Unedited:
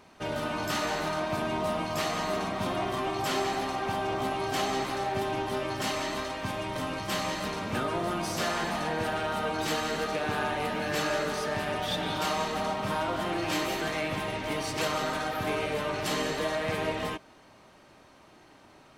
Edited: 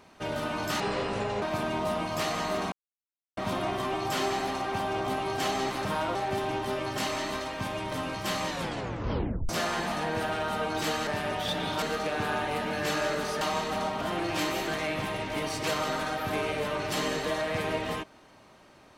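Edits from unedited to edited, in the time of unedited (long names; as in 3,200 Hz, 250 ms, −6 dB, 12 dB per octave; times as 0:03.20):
0:00.80–0:01.21: play speed 66%
0:02.51: splice in silence 0.65 s
0:07.32: tape stop 1.01 s
0:11.50–0:12.25: move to 0:09.91
0:12.85–0:13.15: move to 0:04.99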